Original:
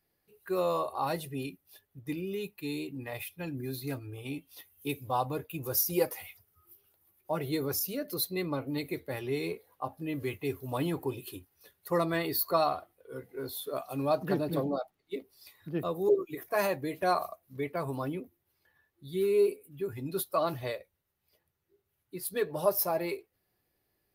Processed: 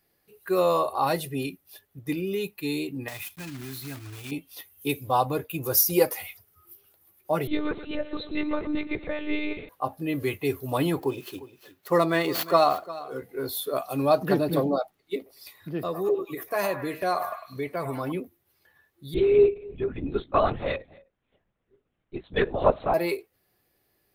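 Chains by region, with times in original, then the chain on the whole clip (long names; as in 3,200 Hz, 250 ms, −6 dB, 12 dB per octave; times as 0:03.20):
0:03.08–0:04.32: one scale factor per block 3 bits + parametric band 500 Hz −11.5 dB 0.78 octaves + downward compressor 2 to 1, threshold −44 dBFS
0:07.47–0:09.69: feedback echo with a high-pass in the loop 124 ms, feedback 62%, high-pass 180 Hz, level −13 dB + one-pitch LPC vocoder at 8 kHz 300 Hz
0:11.00–0:13.22: running median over 5 samples + high-pass filter 130 Hz + single-tap delay 352 ms −17 dB
0:15.16–0:18.12: downward compressor 1.5 to 1, threshold −39 dBFS + echo through a band-pass that steps 101 ms, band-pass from 910 Hz, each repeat 0.7 octaves, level −6 dB
0:19.14–0:22.94: single-tap delay 260 ms −23 dB + linear-prediction vocoder at 8 kHz whisper + one half of a high-frequency compander decoder only
whole clip: low-shelf EQ 170 Hz −4 dB; notch filter 920 Hz, Q 24; level +7.5 dB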